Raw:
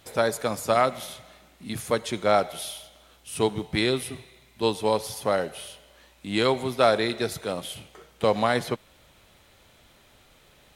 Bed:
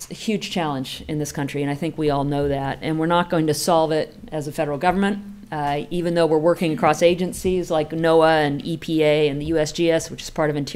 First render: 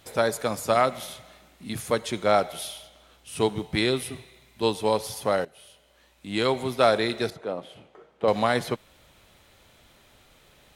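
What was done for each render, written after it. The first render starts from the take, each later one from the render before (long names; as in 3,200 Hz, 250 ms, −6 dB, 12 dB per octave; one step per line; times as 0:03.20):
0:02.67–0:03.38: high-shelf EQ 7,900 Hz −5.5 dB
0:05.45–0:06.69: fade in, from −16 dB
0:07.30–0:08.28: resonant band-pass 520 Hz, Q 0.58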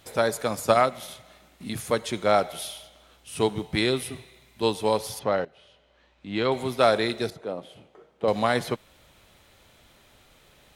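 0:00.55–0:01.70: transient designer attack +4 dB, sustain −3 dB
0:05.19–0:06.52: high-frequency loss of the air 160 metres
0:07.12–0:08.44: parametric band 1,500 Hz −3.5 dB 2.4 octaves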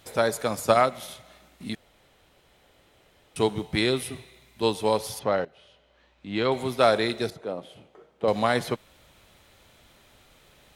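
0:01.75–0:03.36: fill with room tone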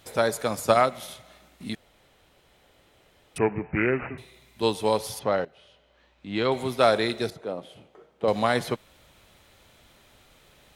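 0:03.38–0:04.18: bad sample-rate conversion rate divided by 8×, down none, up filtered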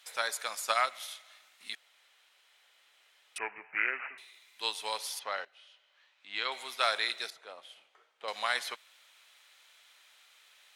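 high-pass filter 1,500 Hz 12 dB per octave
high-shelf EQ 12,000 Hz −8.5 dB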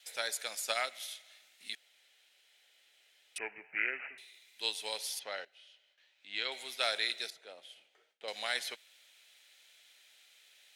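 noise gate with hold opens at −59 dBFS
parametric band 1,100 Hz −14.5 dB 0.75 octaves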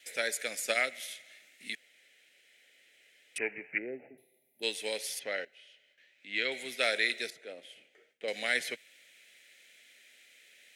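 0:03.78–0:04.63: gain on a spectral selection 900–10,000 Hz −26 dB
graphic EQ with 10 bands 125 Hz +10 dB, 250 Hz +11 dB, 500 Hz +8 dB, 1,000 Hz −11 dB, 2,000 Hz +11 dB, 4,000 Hz −4 dB, 8,000 Hz +3 dB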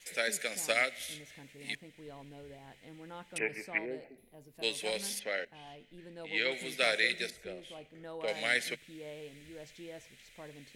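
mix in bed −29 dB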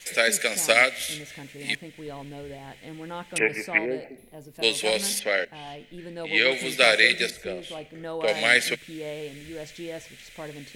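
level +11 dB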